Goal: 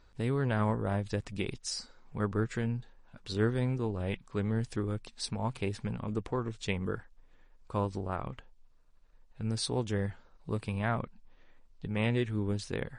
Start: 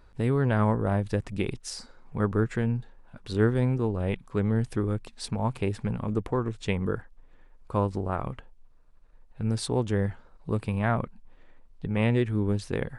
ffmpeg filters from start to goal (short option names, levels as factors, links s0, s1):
-af "lowpass=6900,highshelf=f=3700:g=12,volume=0.531" -ar 32000 -c:a libmp3lame -b:a 40k